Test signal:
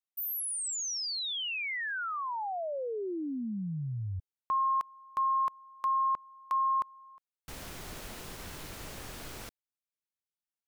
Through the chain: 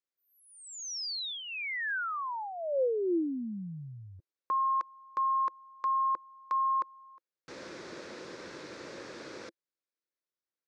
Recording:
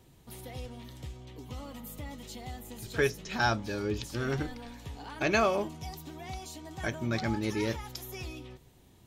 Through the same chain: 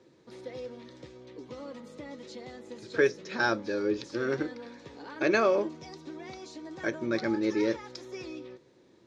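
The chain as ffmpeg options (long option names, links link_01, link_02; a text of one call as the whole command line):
ffmpeg -i in.wav -af "highpass=210,equalizer=frequency=340:width_type=q:width=4:gain=8,equalizer=frequency=520:width_type=q:width=4:gain=9,equalizer=frequency=740:width_type=q:width=4:gain=-7,equalizer=frequency=1600:width_type=q:width=4:gain=3,equalizer=frequency=3000:width_type=q:width=4:gain=-8,lowpass=frequency=5800:width=0.5412,lowpass=frequency=5800:width=1.3066" out.wav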